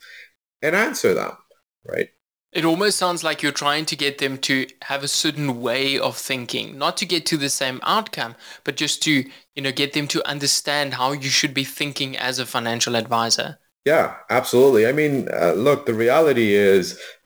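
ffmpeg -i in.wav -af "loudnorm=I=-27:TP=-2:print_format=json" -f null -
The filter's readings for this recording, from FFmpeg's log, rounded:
"input_i" : "-19.6",
"input_tp" : "-4.6",
"input_lra" : "4.5",
"input_thresh" : "-29.9",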